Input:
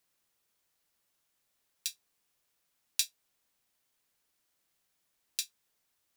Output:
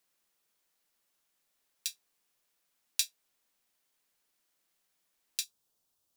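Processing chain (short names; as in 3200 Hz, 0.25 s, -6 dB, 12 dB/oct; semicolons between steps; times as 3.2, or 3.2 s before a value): bell 88 Hz -11 dB 0.98 oct, from 5.44 s 2000 Hz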